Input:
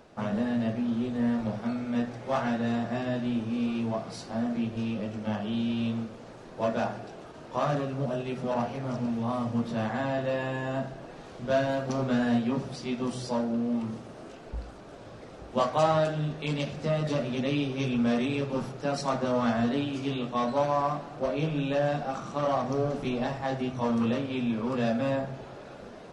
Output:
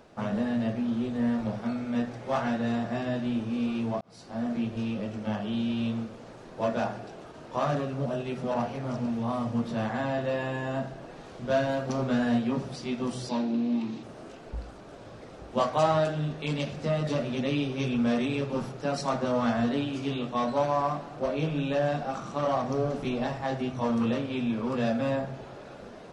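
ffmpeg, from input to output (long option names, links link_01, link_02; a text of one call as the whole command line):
ffmpeg -i in.wav -filter_complex "[0:a]asettb=1/sr,asplit=3[link_01][link_02][link_03];[link_01]atrim=end=13.294[link_04];[link_02]atrim=start=13.29:end=14.03,asetpts=PTS-STARTPTS,afade=type=in:duration=0.004:curve=qsin,afade=type=out:start_time=0.736:duration=0.004:curve=qsin,highpass=frequency=140:width=0.5412,highpass=frequency=140:width=1.3066,equalizer=frequency=300:width_type=q:width=4:gain=8,equalizer=frequency=530:width_type=q:width=4:gain=-9,equalizer=frequency=1300:width_type=q:width=4:gain=-6,equalizer=frequency=2500:width_type=q:width=4:gain=7,equalizer=frequency=3900:width_type=q:width=4:gain=9,lowpass=frequency=7100:width=0.5412,lowpass=frequency=7100:width=1.3066[link_05];[link_03]atrim=start=14.026[link_06];[link_04][link_05]acrossfade=duration=0.004:curve1=hsin:curve2=qsin[link_07];[link_07][link_06]acrossfade=duration=0.004:curve1=qsin:curve2=hsin,asplit=2[link_08][link_09];[link_08]atrim=end=4.01,asetpts=PTS-STARTPTS,afade=type=out:start_time=4.006:duration=0.004:curve=hsin[link_10];[link_09]atrim=start=4.01,asetpts=PTS-STARTPTS,afade=type=in:duration=0.49[link_11];[link_10][link_11]concat=n=2:v=0:a=1" out.wav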